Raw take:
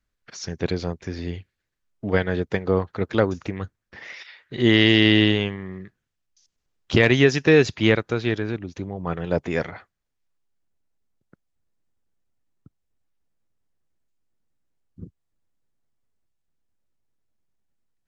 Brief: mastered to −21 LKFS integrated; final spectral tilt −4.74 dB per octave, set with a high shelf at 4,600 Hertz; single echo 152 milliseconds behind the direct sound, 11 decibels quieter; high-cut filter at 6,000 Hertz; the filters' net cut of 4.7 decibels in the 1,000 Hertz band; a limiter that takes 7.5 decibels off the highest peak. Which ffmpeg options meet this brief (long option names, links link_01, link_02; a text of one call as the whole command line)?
ffmpeg -i in.wav -af "lowpass=6000,equalizer=frequency=1000:width_type=o:gain=-7,highshelf=frequency=4600:gain=4,alimiter=limit=-10dB:level=0:latency=1,aecho=1:1:152:0.282,volume=4dB" out.wav